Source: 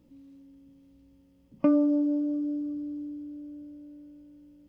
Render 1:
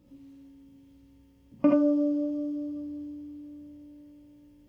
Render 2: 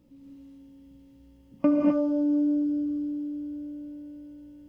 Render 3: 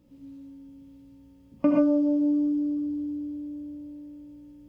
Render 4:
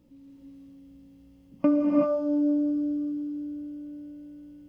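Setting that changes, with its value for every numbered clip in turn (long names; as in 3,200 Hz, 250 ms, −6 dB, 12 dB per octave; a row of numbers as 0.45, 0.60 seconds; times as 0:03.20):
reverb whose tail is shaped and stops, gate: 100, 280, 150, 410 milliseconds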